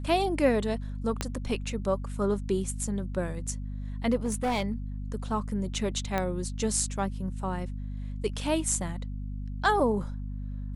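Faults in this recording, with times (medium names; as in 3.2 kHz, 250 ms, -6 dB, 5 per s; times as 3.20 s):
hum 50 Hz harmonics 5 -35 dBFS
1.21 s: pop -13 dBFS
4.24–4.72 s: clipped -23.5 dBFS
6.18 s: pop -15 dBFS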